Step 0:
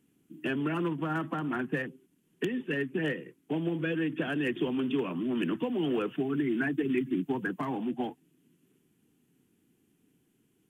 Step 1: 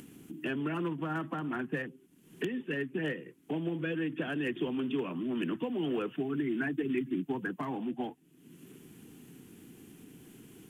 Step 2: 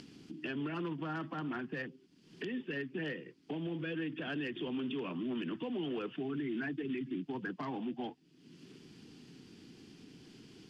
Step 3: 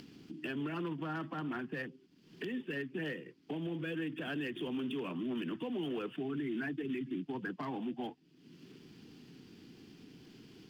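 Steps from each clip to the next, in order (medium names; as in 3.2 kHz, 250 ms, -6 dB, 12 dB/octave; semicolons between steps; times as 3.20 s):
upward compressor, threshold -32 dBFS; trim -3 dB
resonant low-pass 4.8 kHz, resonance Q 6.3; peak limiter -27.5 dBFS, peak gain reduction 8 dB; trim -2.5 dB
median filter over 5 samples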